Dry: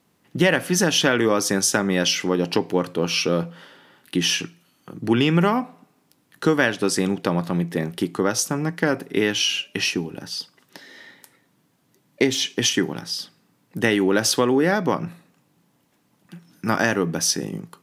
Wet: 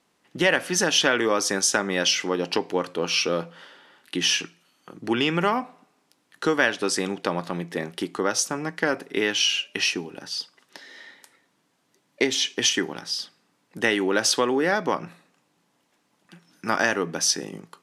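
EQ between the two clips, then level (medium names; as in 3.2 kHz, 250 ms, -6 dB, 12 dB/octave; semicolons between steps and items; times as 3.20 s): low-pass 9.2 kHz 12 dB/octave; peaking EQ 100 Hz -13 dB 2.7 oct; 0.0 dB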